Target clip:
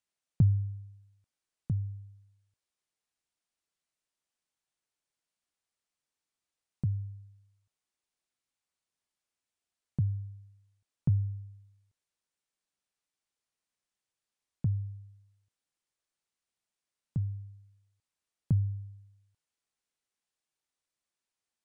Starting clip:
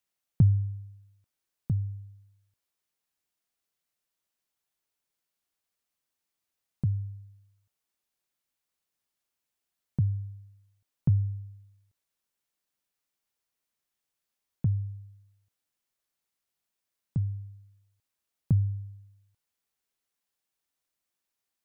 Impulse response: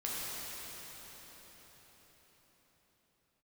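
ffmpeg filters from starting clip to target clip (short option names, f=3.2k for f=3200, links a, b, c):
-af "aresample=22050,aresample=44100,volume=-3dB"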